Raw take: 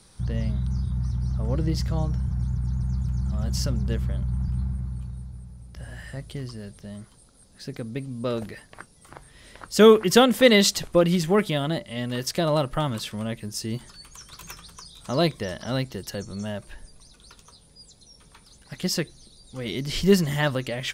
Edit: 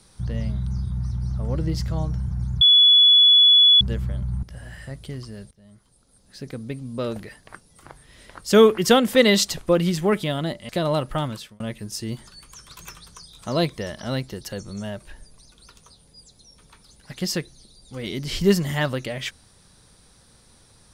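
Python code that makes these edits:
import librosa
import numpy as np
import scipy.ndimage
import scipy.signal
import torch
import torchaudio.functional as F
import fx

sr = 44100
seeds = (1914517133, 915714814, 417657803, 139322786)

y = fx.edit(x, sr, fx.bleep(start_s=2.61, length_s=1.2, hz=3410.0, db=-10.0),
    fx.cut(start_s=4.43, length_s=1.26),
    fx.fade_in_from(start_s=6.77, length_s=1.0, floor_db=-19.5),
    fx.cut(start_s=11.95, length_s=0.36),
    fx.fade_out_span(start_s=12.86, length_s=0.36), tone=tone)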